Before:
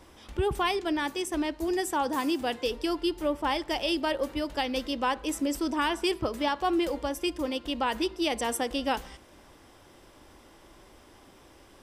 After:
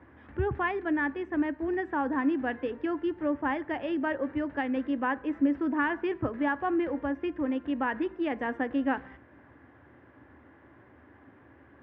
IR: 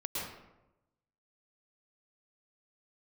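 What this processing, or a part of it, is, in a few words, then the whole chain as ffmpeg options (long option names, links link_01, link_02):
bass cabinet: -af "highpass=frequency=74:width=0.5412,highpass=frequency=74:width=1.3066,equalizer=frequency=76:width_type=q:width=4:gain=9,equalizer=frequency=120:width_type=q:width=4:gain=9,equalizer=frequency=270:width_type=q:width=4:gain=9,equalizer=frequency=1700:width_type=q:width=4:gain=10,lowpass=frequency=2100:width=0.5412,lowpass=frequency=2100:width=1.3066,volume=-3.5dB"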